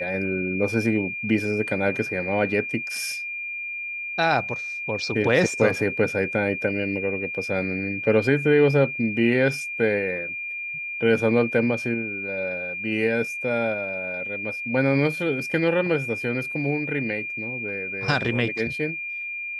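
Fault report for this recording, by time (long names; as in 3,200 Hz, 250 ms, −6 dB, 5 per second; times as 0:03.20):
whistle 2,400 Hz −29 dBFS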